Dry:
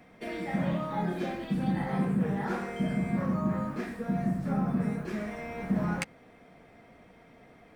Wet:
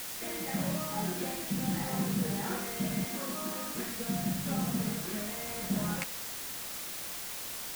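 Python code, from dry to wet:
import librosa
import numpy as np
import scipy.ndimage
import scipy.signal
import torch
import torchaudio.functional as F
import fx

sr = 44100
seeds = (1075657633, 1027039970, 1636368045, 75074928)

y = fx.cheby1_highpass(x, sr, hz=270.0, order=3, at=(3.05, 3.75))
y = fx.quant_dither(y, sr, seeds[0], bits=6, dither='triangular')
y = F.gain(torch.from_numpy(y), -4.0).numpy()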